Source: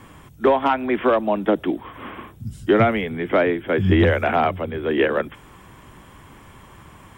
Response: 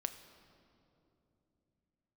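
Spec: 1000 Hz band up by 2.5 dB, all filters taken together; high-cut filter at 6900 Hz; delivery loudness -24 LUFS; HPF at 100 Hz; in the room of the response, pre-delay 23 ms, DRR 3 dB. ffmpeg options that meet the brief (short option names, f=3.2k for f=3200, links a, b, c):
-filter_complex "[0:a]highpass=100,lowpass=6.9k,equalizer=f=1k:t=o:g=3.5,asplit=2[a][b];[1:a]atrim=start_sample=2205,adelay=23[c];[b][c]afir=irnorm=-1:irlink=0,volume=-2.5dB[d];[a][d]amix=inputs=2:normalize=0,volume=-6.5dB"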